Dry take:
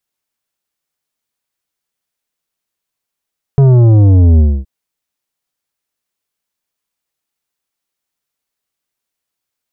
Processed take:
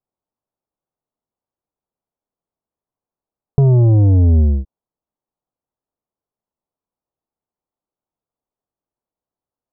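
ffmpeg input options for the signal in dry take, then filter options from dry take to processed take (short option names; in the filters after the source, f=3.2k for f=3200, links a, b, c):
-f lavfi -i "aevalsrc='0.562*clip((1.07-t)/0.26,0,1)*tanh(3.16*sin(2*PI*140*1.07/log(65/140)*(exp(log(65/140)*t/1.07)-1)))/tanh(3.16)':d=1.07:s=44100"
-af "lowpass=f=1k:w=0.5412,lowpass=f=1k:w=1.3066,acompressor=threshold=-10dB:ratio=6"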